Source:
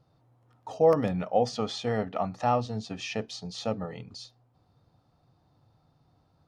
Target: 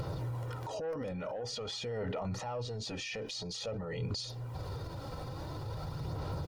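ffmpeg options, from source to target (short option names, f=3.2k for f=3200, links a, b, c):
-filter_complex "[0:a]asplit=2[a][b];[b]acompressor=mode=upward:threshold=-34dB:ratio=2.5,volume=-1dB[c];[a][c]amix=inputs=2:normalize=0,bandreject=f=890:w=14,aecho=1:1:2.1:0.55,acontrast=77,alimiter=level_in=11dB:limit=-24dB:level=0:latency=1:release=33,volume=-11dB,aphaser=in_gain=1:out_gain=1:delay=3.9:decay=0.32:speed=0.48:type=sinusoidal,volume=2.5dB"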